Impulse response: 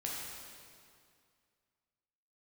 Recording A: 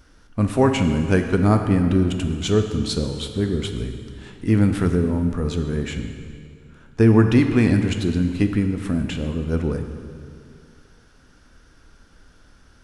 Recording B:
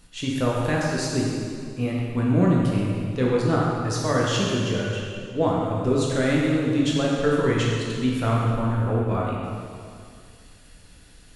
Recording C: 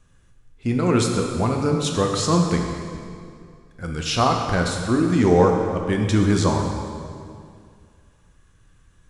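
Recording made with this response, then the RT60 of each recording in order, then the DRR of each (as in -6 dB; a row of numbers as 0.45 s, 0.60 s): B; 2.2 s, 2.2 s, 2.2 s; 5.5 dB, -4.0 dB, 1.5 dB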